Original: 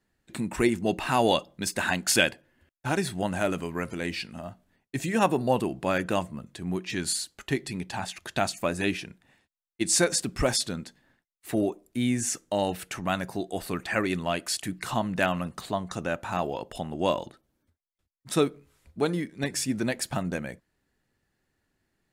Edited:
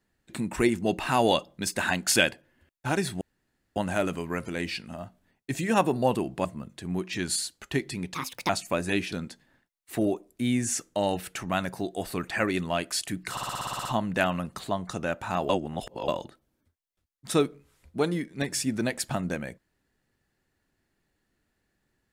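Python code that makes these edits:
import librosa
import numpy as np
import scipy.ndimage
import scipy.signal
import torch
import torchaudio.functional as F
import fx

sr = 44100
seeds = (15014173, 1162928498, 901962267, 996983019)

y = fx.edit(x, sr, fx.insert_room_tone(at_s=3.21, length_s=0.55),
    fx.cut(start_s=5.9, length_s=0.32),
    fx.speed_span(start_s=7.91, length_s=0.5, speed=1.42),
    fx.cut(start_s=9.04, length_s=1.64),
    fx.stutter(start_s=14.87, slice_s=0.06, count=10),
    fx.reverse_span(start_s=16.51, length_s=0.59), tone=tone)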